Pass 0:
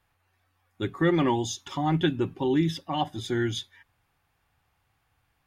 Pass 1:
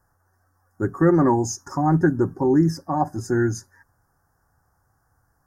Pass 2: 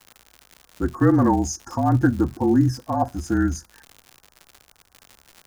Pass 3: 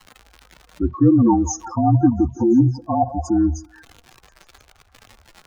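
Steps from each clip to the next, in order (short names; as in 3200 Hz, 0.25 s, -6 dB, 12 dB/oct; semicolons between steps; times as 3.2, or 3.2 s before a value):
elliptic band-stop 1600–5400 Hz, stop band 50 dB; gain +6.5 dB
crackle 130/s -31 dBFS; frequency shift -37 Hz
spectral contrast raised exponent 2.3; delay with a stepping band-pass 0.172 s, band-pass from 650 Hz, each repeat 0.7 oct, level -10 dB; gain +3.5 dB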